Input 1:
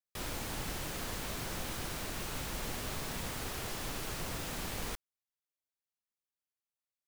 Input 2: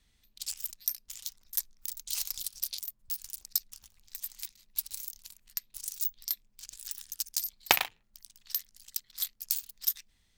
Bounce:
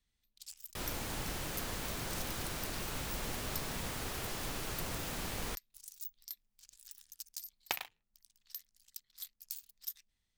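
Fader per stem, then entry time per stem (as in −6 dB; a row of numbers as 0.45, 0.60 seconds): −0.5, −13.0 decibels; 0.60, 0.00 seconds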